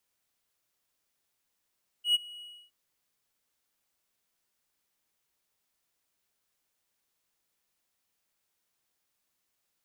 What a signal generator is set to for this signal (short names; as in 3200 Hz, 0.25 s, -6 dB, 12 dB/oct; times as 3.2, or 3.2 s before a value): ADSR triangle 2910 Hz, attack 0.107 s, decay 24 ms, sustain -23 dB, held 0.37 s, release 0.296 s -17.5 dBFS